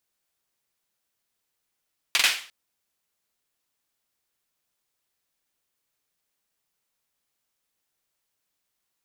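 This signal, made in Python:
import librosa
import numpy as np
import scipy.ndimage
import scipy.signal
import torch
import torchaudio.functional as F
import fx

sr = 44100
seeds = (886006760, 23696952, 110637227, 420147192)

y = fx.drum_clap(sr, seeds[0], length_s=0.35, bursts=3, spacing_ms=44, hz=2600.0, decay_s=0.41)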